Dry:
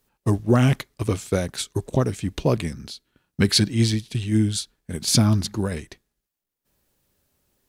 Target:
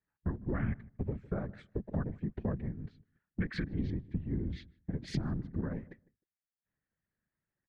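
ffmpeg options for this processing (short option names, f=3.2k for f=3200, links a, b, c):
-filter_complex "[0:a]afwtdn=0.0282,equalizer=f=140:w=1.9:g=11.5,asplit=2[a][b];[b]alimiter=limit=-11.5dB:level=0:latency=1,volume=-2.5dB[c];[a][c]amix=inputs=2:normalize=0,lowpass=f=1.8k:t=q:w=4.8,afftfilt=real='hypot(re,im)*cos(2*PI*random(0))':imag='hypot(re,im)*sin(2*PI*random(1))':win_size=512:overlap=0.75,acompressor=threshold=-28dB:ratio=4,asplit=2[d][e];[e]adelay=154,lowpass=f=850:p=1,volume=-19dB,asplit=2[f][g];[g]adelay=154,lowpass=f=850:p=1,volume=0.17[h];[f][h]amix=inputs=2:normalize=0[i];[d][i]amix=inputs=2:normalize=0,volume=-5dB"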